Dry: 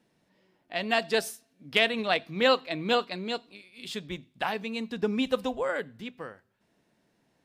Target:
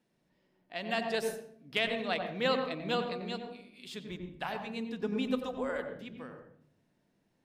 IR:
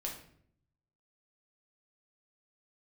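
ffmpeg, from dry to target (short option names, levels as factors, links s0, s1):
-filter_complex "[0:a]asplit=2[s0][s1];[s1]lowpass=f=1600:p=1[s2];[1:a]atrim=start_sample=2205,lowshelf=f=330:g=7,adelay=91[s3];[s2][s3]afir=irnorm=-1:irlink=0,volume=0.596[s4];[s0][s4]amix=inputs=2:normalize=0,volume=0.422"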